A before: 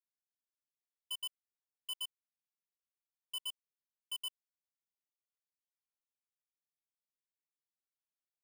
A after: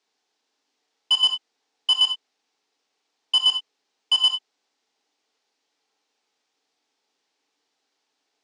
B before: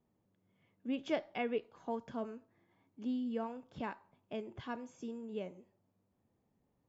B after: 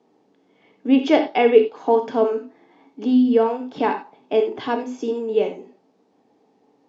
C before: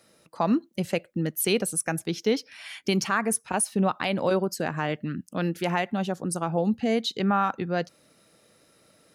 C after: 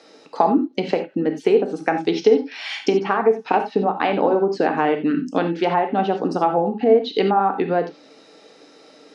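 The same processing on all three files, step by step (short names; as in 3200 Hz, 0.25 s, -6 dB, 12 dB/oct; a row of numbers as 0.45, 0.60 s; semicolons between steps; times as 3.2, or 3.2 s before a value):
treble ducked by the level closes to 1100 Hz, closed at -20.5 dBFS; high shelf 4100 Hz +8 dB; compressor, threshold -26 dBFS; speaker cabinet 270–5600 Hz, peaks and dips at 280 Hz +10 dB, 440 Hz +9 dB, 810 Hz +9 dB; non-linear reverb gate 0.11 s flat, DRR 5.5 dB; match loudness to -20 LUFS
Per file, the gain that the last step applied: +20.0, +14.5, +8.0 dB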